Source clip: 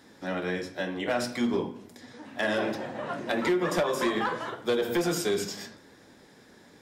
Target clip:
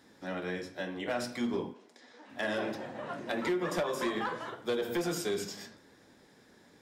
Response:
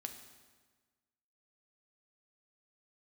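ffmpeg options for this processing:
-filter_complex "[0:a]asplit=3[link_01][link_02][link_03];[link_01]afade=type=out:start_time=1.73:duration=0.02[link_04];[link_02]highpass=400,lowpass=6700,afade=type=in:start_time=1.73:duration=0.02,afade=type=out:start_time=2.28:duration=0.02[link_05];[link_03]afade=type=in:start_time=2.28:duration=0.02[link_06];[link_04][link_05][link_06]amix=inputs=3:normalize=0,volume=-5.5dB"

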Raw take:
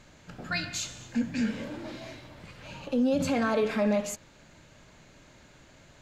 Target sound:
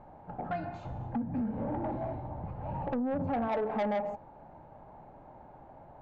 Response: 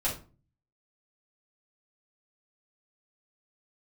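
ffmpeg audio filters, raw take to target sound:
-filter_complex "[0:a]asettb=1/sr,asplit=3[link_01][link_02][link_03];[link_01]atrim=end=0.854[link_04];[link_02]atrim=start=0.85:end=3.48,asetpts=PTS-STARTPTS,afade=type=in:duration=0.004:curve=qsin,afade=type=out:start_time=2.626:duration=0.004:curve=qsin,equalizer=frequency=66:width=0.37:gain=13[link_05];[link_03]atrim=start=3.476[link_06];[link_04][link_05]acrossfade=duration=0.004:curve1=hsin:curve2=qsin[link_07];[link_07][link_06]acrossfade=duration=0.004:curve1=qsin:curve2=hsin,acompressor=threshold=-28dB:ratio=12,lowpass=frequency=820:width_type=q:width=7.2,asoftclip=type=tanh:threshold=-26dB"

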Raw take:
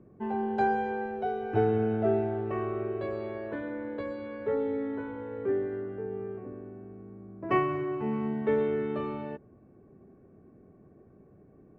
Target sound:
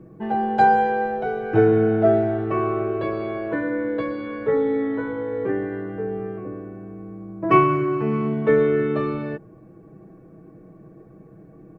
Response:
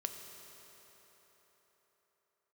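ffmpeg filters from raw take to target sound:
-af "aecho=1:1:6.2:0.83,volume=8dB"

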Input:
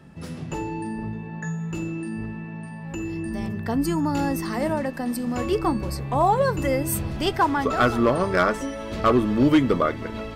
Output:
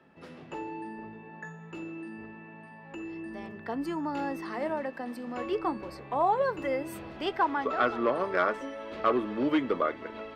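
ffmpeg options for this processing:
ffmpeg -i in.wav -filter_complex "[0:a]asettb=1/sr,asplit=3[link_01][link_02][link_03];[link_01]atrim=end=7.434[link_04];[link_02]atrim=start=7.43:end=8.12,asetpts=PTS-STARTPTS,afade=type=in:duration=0.004:curve=qsin,afade=type=out:start_time=0.686:duration=0.004:curve=qsin,acrossover=split=7800[link_05][link_06];[link_06]acompressor=threshold=-60dB:ratio=4:attack=1:release=60[link_07];[link_05][link_07]amix=inputs=2:normalize=0[link_08];[link_03]atrim=start=8.116[link_09];[link_04][link_08]acrossfade=duration=0.004:curve1=hsin:curve2=qsin[link_10];[link_10][link_09]acrossfade=duration=0.004:curve1=qsin:curve2=hsin,acrossover=split=270 3800:gain=0.126 1 0.141[link_11][link_12][link_13];[link_11][link_12][link_13]amix=inputs=3:normalize=0,volume=-5.5dB" out.wav

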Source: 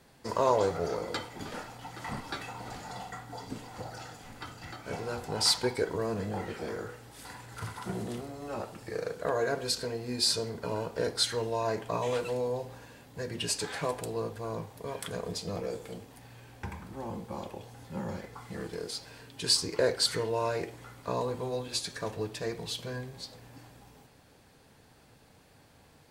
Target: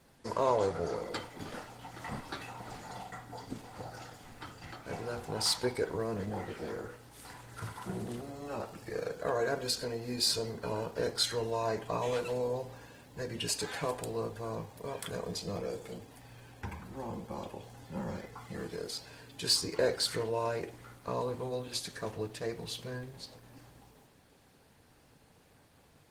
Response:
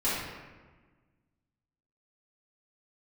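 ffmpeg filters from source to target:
-af "aeval=exprs='0.251*(cos(1*acos(clip(val(0)/0.251,-1,1)))-cos(1*PI/2))+0.00794*(cos(5*acos(clip(val(0)/0.251,-1,1)))-cos(5*PI/2))':channel_layout=same,volume=-3dB" -ar 48000 -c:a libopus -b:a 20k

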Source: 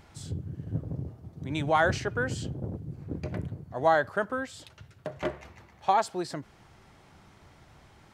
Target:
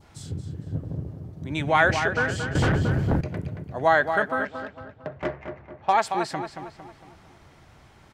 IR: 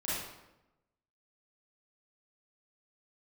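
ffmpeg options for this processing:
-filter_complex "[0:a]asplit=2[link_01][link_02];[link_02]adelay=227,lowpass=frequency=4700:poles=1,volume=-7.5dB,asplit=2[link_03][link_04];[link_04]adelay=227,lowpass=frequency=4700:poles=1,volume=0.48,asplit=2[link_05][link_06];[link_06]adelay=227,lowpass=frequency=4700:poles=1,volume=0.48,asplit=2[link_07][link_08];[link_08]adelay=227,lowpass=frequency=4700:poles=1,volume=0.48,asplit=2[link_09][link_10];[link_10]adelay=227,lowpass=frequency=4700:poles=1,volume=0.48,asplit=2[link_11][link_12];[link_12]adelay=227,lowpass=frequency=4700:poles=1,volume=0.48[link_13];[link_01][link_03][link_05][link_07][link_09][link_11][link_13]amix=inputs=7:normalize=0,adynamicequalizer=threshold=0.00562:dfrequency=2100:dqfactor=1.3:tfrequency=2100:tqfactor=1.3:attack=5:release=100:ratio=0.375:range=4:mode=boostabove:tftype=bell,asettb=1/sr,asplit=3[link_14][link_15][link_16];[link_14]atrim=end=2.554[link_17];[link_15]atrim=start=2.55:end=3.21,asetpts=PTS-STARTPTS,afade=type=in:duration=0.004:curve=qsin,afade=type=out:start_time=0.656:duration=0.004:curve=qsin,aeval=exprs='0.112*sin(PI/2*3.55*val(0)/0.112)':channel_layout=same[link_18];[link_16]atrim=start=3.206[link_19];[link_17][link_18]acrossfade=duration=0.004:curve1=hsin:curve2=qsin[link_20];[link_20][link_19]acrossfade=duration=0.004:curve1=qsin:curve2=hsin,asettb=1/sr,asplit=3[link_21][link_22][link_23];[link_21]atrim=end=4.454[link_24];[link_22]atrim=start=4.45:end=5.93,asetpts=PTS-STARTPTS,afade=type=in:duration=0.004:curve=qsin,afade=type=out:start_time=1.476:duration=0.004:curve=qsin,adynamicsmooth=sensitivity=2:basefreq=1600[link_25];[link_23]atrim=start=5.926[link_26];[link_24][link_25]acrossfade=duration=0.004:curve1=hsin:curve2=qsin[link_27];[link_27][link_26]acrossfade=duration=0.004:curve1=qsin:curve2=hsin,volume=2dB"

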